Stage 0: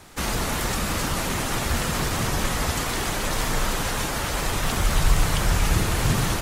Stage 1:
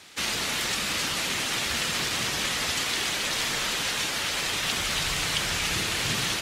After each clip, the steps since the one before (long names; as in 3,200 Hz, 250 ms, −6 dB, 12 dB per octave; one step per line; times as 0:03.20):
meter weighting curve D
level −6.5 dB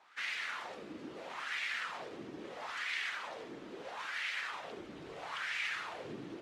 LFO wah 0.76 Hz 300–2,100 Hz, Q 3
level −2.5 dB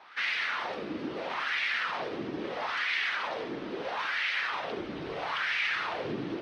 in parallel at +1.5 dB: brickwall limiter −36 dBFS, peak gain reduction 10 dB
on the sum: Savitzky-Golay smoothing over 15 samples
level +4 dB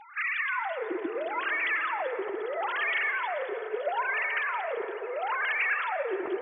three sine waves on the formant tracks
convolution reverb RT60 3.8 s, pre-delay 78 ms, DRR 9 dB
level +2 dB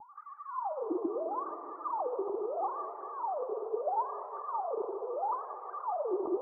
pitch vibrato 5.2 Hz 86 cents
Chebyshev low-pass with heavy ripple 1,200 Hz, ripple 3 dB